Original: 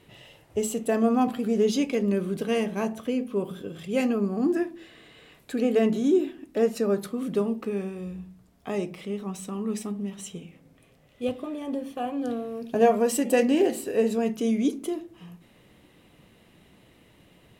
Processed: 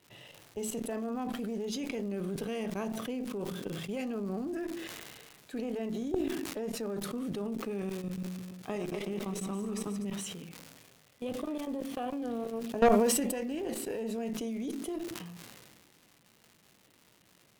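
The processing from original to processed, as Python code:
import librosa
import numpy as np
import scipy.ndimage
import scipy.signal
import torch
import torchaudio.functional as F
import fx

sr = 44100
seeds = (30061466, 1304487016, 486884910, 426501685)

y = fx.reverse_delay_fb(x, sr, ms=123, feedback_pct=61, wet_db=-6.5, at=(8.02, 10.05))
y = scipy.signal.sosfilt(scipy.signal.butter(4, 91.0, 'highpass', fs=sr, output='sos'), y)
y = fx.notch(y, sr, hz=7500.0, q=20.0)
y = fx.level_steps(y, sr, step_db=17)
y = fx.dmg_crackle(y, sr, seeds[0], per_s=320.0, level_db=-46.0)
y = fx.tube_stage(y, sr, drive_db=19.0, bias=0.7)
y = fx.sustainer(y, sr, db_per_s=30.0)
y = y * 10.0 ** (2.5 / 20.0)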